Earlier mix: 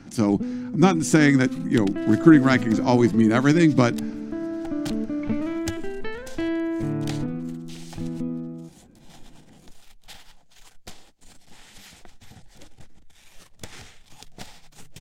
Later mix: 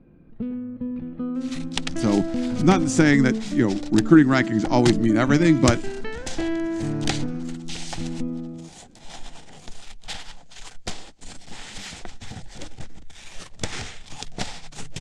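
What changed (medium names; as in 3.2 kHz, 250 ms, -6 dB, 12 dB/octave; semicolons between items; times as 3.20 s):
speech: entry +1.85 s; second sound +10.5 dB; master: add low-pass 8.8 kHz 24 dB/octave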